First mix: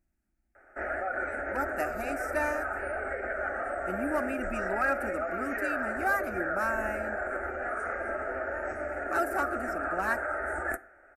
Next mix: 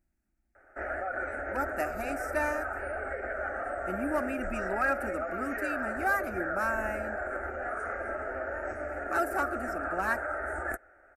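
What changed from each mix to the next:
background: send off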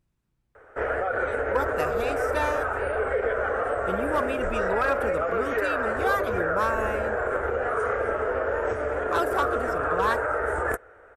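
background +5.0 dB
master: remove phaser with its sweep stopped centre 690 Hz, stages 8

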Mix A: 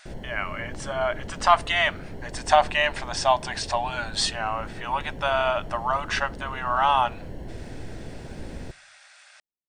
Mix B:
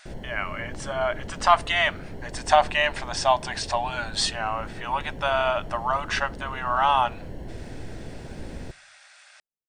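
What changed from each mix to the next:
nothing changed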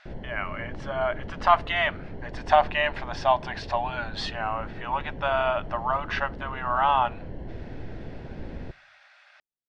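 master: add high-frequency loss of the air 250 metres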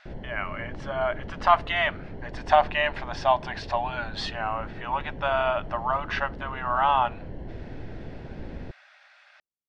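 reverb: off

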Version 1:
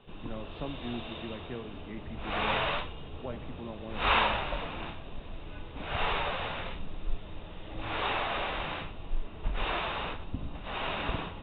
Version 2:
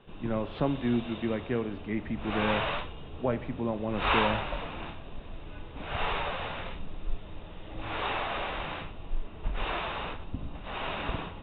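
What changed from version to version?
speech +10.5 dB
background: add high-frequency loss of the air 88 metres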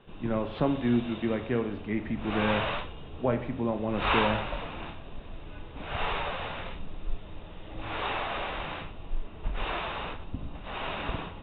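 speech: send +7.0 dB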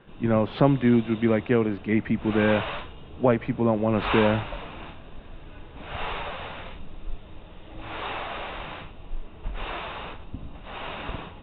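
speech +10.5 dB
reverb: off

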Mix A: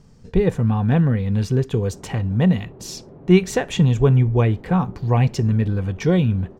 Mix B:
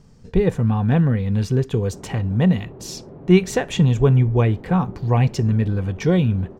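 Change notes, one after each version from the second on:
background +3.0 dB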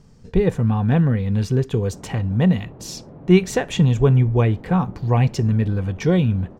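background: add parametric band 390 Hz −9 dB 0.22 octaves

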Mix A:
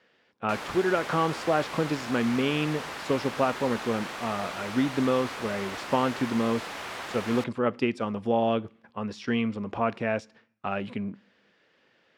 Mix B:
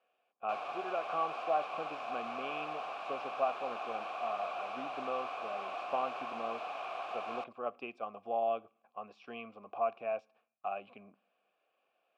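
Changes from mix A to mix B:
background +6.5 dB
master: add formant filter a

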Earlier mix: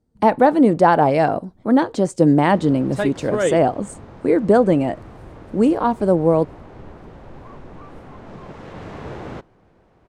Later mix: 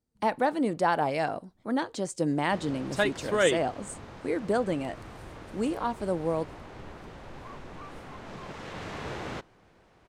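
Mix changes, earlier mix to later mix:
speech −8.5 dB
master: add tilt shelving filter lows −6 dB, about 1,400 Hz

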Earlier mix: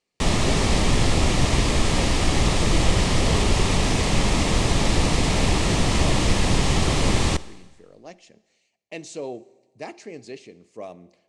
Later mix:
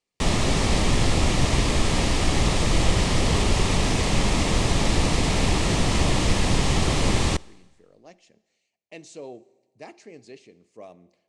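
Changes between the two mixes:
speech −6.5 dB
background: send −7.5 dB

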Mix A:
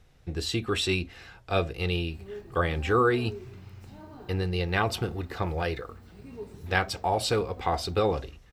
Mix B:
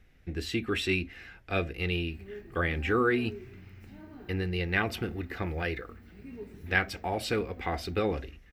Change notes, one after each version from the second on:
master: add octave-band graphic EQ 125/250/500/1,000/2,000/4,000/8,000 Hz −7/+4/−4/−9/+7/−6/−8 dB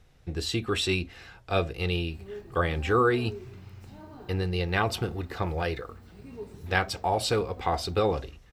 master: add octave-band graphic EQ 125/250/500/1,000/2,000/4,000/8,000 Hz +7/−4/+4/+9/−7/+6/+8 dB

